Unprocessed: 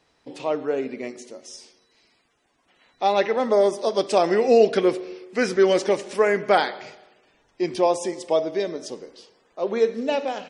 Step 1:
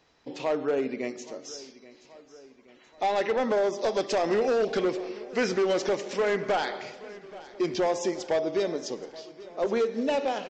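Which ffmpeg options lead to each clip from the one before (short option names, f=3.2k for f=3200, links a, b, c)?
-af "acompressor=threshold=-20dB:ratio=4,aresample=16000,volume=20.5dB,asoftclip=hard,volume=-20.5dB,aresample=44100,aecho=1:1:827|1654|2481|3308|4135:0.112|0.064|0.0365|0.0208|0.0118"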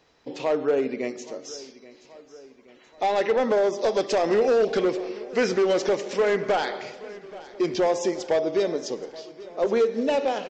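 -af "equalizer=f=470:w=2.4:g=3,volume=2dB"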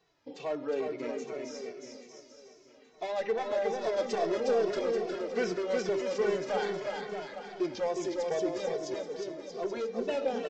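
-filter_complex "[0:a]asplit=2[a][b];[b]aecho=0:1:360|630|832.5|984.4|1098:0.631|0.398|0.251|0.158|0.1[c];[a][c]amix=inputs=2:normalize=0,asplit=2[d][e];[e]adelay=2.2,afreqshift=-2.4[f];[d][f]amix=inputs=2:normalize=1,volume=-7dB"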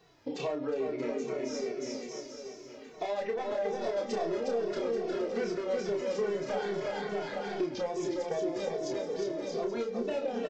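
-filter_complex "[0:a]acompressor=threshold=-42dB:ratio=4,lowshelf=f=410:g=4.5,asplit=2[a][b];[b]adelay=30,volume=-5dB[c];[a][c]amix=inputs=2:normalize=0,volume=7dB"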